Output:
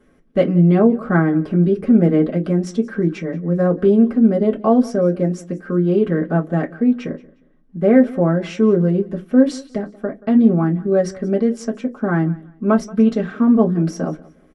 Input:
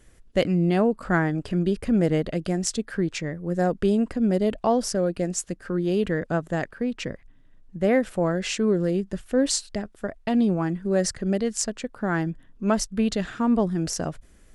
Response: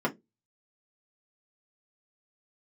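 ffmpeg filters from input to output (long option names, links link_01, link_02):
-filter_complex "[0:a]aecho=1:1:179|358:0.0841|0.0219[link_01];[1:a]atrim=start_sample=2205,asetrate=48510,aresample=44100[link_02];[link_01][link_02]afir=irnorm=-1:irlink=0,volume=-6.5dB"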